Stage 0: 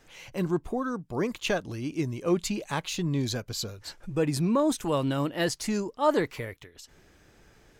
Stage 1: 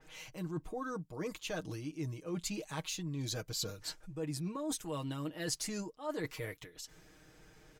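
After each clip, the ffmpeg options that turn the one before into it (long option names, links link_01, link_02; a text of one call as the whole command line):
ffmpeg -i in.wav -af "aecho=1:1:6.4:0.68,areverse,acompressor=threshold=-33dB:ratio=5,areverse,adynamicequalizer=threshold=0.00282:dfrequency=4100:dqfactor=0.7:tfrequency=4100:tqfactor=0.7:attack=5:release=100:ratio=0.375:range=2.5:mode=boostabove:tftype=highshelf,volume=-4dB" out.wav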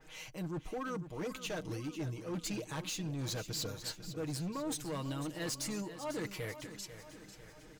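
ffmpeg -i in.wav -filter_complex "[0:a]volume=36dB,asoftclip=hard,volume=-36dB,asplit=2[link_01][link_02];[link_02]aecho=0:1:496|992|1488|1984|2480|2976:0.251|0.136|0.0732|0.0396|0.0214|0.0115[link_03];[link_01][link_03]amix=inputs=2:normalize=0,volume=1.5dB" out.wav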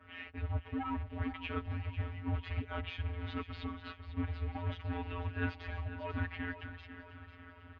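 ffmpeg -i in.wav -af "acrusher=bits=3:mode=log:mix=0:aa=0.000001,afftfilt=real='hypot(re,im)*cos(PI*b)':imag='0':win_size=1024:overlap=0.75,highpass=frequency=190:width_type=q:width=0.5412,highpass=frequency=190:width_type=q:width=1.307,lowpass=frequency=3100:width_type=q:width=0.5176,lowpass=frequency=3100:width_type=q:width=0.7071,lowpass=frequency=3100:width_type=q:width=1.932,afreqshift=-250,volume=7dB" out.wav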